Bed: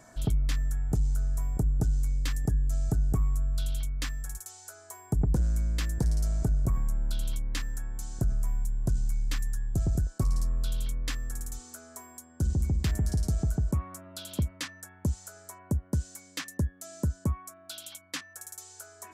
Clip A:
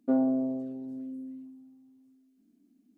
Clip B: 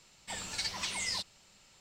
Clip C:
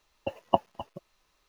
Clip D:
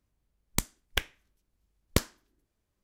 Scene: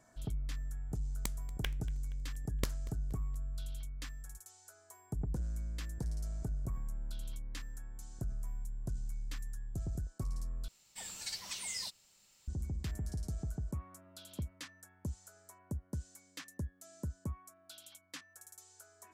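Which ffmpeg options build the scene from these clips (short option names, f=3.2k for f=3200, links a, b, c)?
-filter_complex "[0:a]volume=-11.5dB[a];[4:a]aecho=1:1:236|472|708|944:0.1|0.047|0.0221|0.0104[b];[2:a]aemphasis=mode=production:type=50fm[c];[a]asplit=2[d][e];[d]atrim=end=10.684[f];[c]atrim=end=1.8,asetpts=PTS-STARTPTS,volume=-10.5dB[g];[e]atrim=start=12.476[h];[b]atrim=end=2.83,asetpts=PTS-STARTPTS,volume=-11.5dB,afade=t=in:d=0.004:c=hsin,afade=t=out:st=2.826:d=0.004:c=hsin,adelay=670[i];[f][g]acrossfade=d=0.004:c1=hsin:c2=hsin[j];[j][h]acrossfade=d=0.004:c1=hsin:c2=hsin[k];[k][i]amix=inputs=2:normalize=0"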